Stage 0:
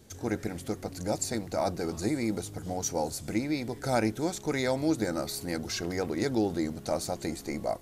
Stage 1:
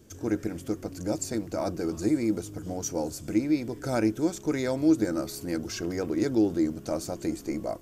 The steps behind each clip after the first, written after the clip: thirty-one-band EQ 315 Hz +7 dB, 800 Hz -7 dB, 2000 Hz -5 dB, 4000 Hz -8 dB, 10000 Hz -6 dB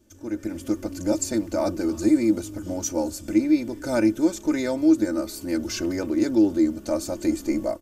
comb 3.4 ms, depth 71%; AGC gain up to 13 dB; gain -7.5 dB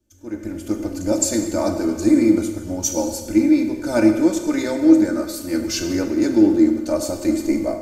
plate-style reverb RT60 1.5 s, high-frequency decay 0.95×, DRR 4 dB; three-band expander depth 40%; gain +3.5 dB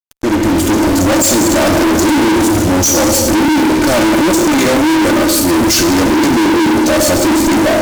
fuzz box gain 40 dB, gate -43 dBFS; gain +3.5 dB

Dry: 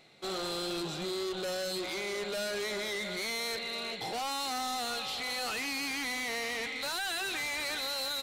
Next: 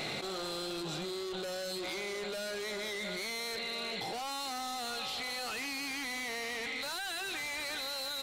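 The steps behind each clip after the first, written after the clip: fast leveller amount 100%; gain -4.5 dB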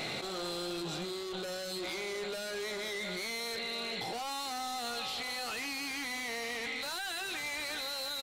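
doubler 17 ms -13 dB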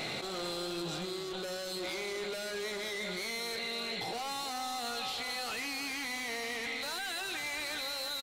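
echo 0.328 s -11.5 dB

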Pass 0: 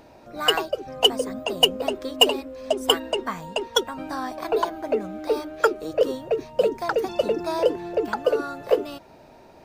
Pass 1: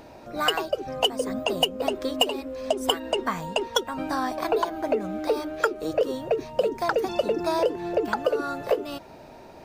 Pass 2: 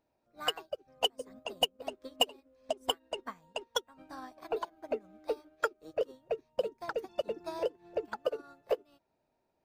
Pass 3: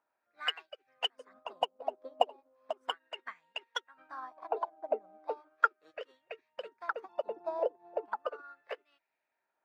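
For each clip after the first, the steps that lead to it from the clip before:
compressor 4:1, threshold -24 dBFS, peak gain reduction 12 dB; gain +3.5 dB
upward expander 2.5:1, over -36 dBFS; gain -5 dB
wah 0.36 Hz 730–2100 Hz, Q 2.7; gain +7.5 dB

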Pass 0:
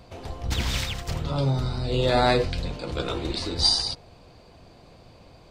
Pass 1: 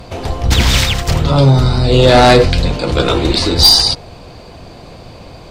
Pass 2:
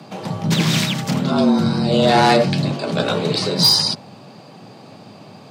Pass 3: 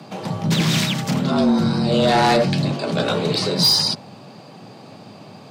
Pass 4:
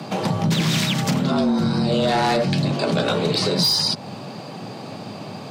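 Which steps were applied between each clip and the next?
sine folder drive 6 dB, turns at -7.5 dBFS; gain +6 dB
frequency shift +100 Hz; gain -6.5 dB
soft clip -9 dBFS, distortion -17 dB
compressor 5:1, threshold -25 dBFS, peak gain reduction 11 dB; gain +7 dB

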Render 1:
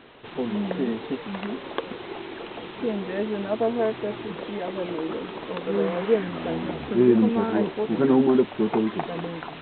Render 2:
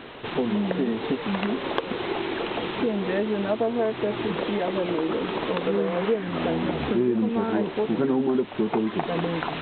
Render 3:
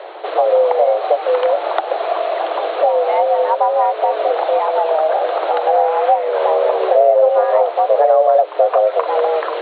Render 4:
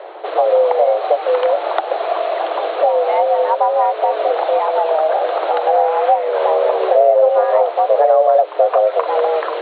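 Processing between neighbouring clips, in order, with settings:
compressor 4:1, threshold -31 dBFS, peak gain reduction 15.5 dB; gain +8.5 dB
tilt shelf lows +7.5 dB, about 780 Hz; frequency shift +310 Hz; gain +6 dB
mismatched tape noise reduction decoder only

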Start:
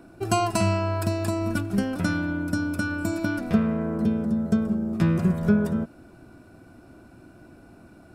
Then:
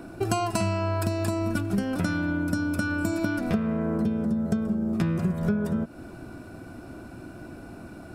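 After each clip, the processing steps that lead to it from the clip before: compressor 4:1, threshold -32 dBFS, peak gain reduction 14.5 dB; gain +7.5 dB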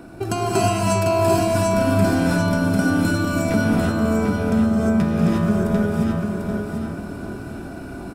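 on a send: feedback echo 0.745 s, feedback 33%, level -5 dB; on the sum: non-linear reverb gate 0.38 s rising, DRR -5 dB; gain +1 dB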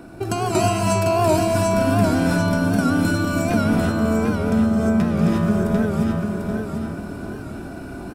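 record warp 78 rpm, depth 100 cents

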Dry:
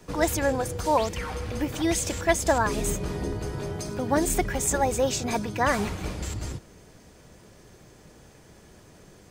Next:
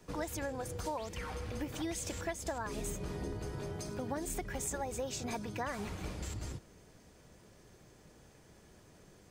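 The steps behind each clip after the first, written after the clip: compressor 10:1, threshold -26 dBFS, peak gain reduction 11 dB; gain -8 dB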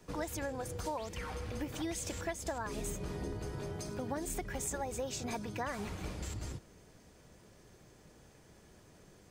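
nothing audible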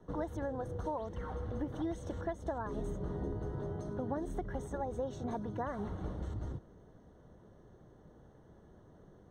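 running mean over 18 samples; gain +2 dB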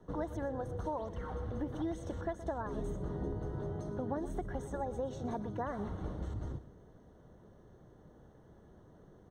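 echo 0.122 s -15 dB

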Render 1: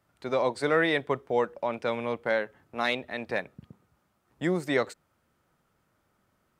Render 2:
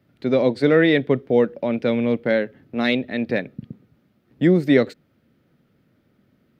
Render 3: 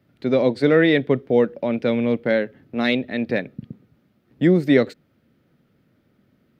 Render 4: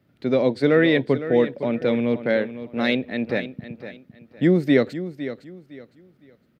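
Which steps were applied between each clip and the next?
graphic EQ 125/250/500/1000/2000/4000/8000 Hz +8/+12/+5/-9/+4/+5/-11 dB; gain +2.5 dB
nothing audible
feedback echo 0.509 s, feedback 27%, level -12.5 dB; gain -1.5 dB

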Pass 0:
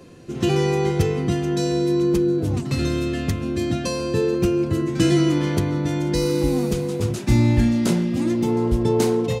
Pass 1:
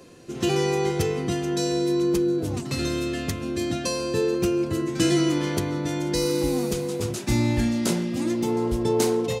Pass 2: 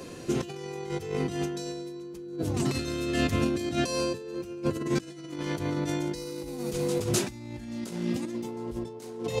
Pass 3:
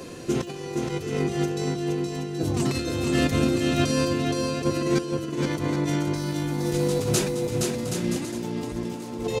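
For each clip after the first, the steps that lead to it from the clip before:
tone controls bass -6 dB, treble +4 dB; gain -1.5 dB
negative-ratio compressor -30 dBFS, ratio -0.5
bouncing-ball echo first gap 0.47 s, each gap 0.65×, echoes 5; gain +3 dB

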